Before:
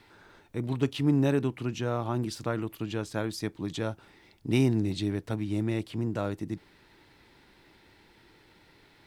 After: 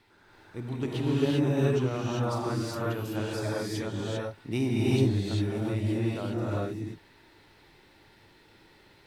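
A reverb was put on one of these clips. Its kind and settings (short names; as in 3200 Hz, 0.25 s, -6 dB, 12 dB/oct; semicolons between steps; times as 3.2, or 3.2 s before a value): non-linear reverb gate 0.42 s rising, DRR -6.5 dB; gain -6 dB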